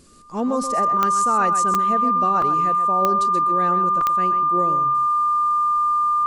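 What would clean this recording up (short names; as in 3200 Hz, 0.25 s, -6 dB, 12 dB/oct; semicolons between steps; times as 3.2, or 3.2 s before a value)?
de-click; notch 1200 Hz, Q 30; interpolate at 1.74/2.42/4.01, 2.9 ms; inverse comb 0.129 s -10 dB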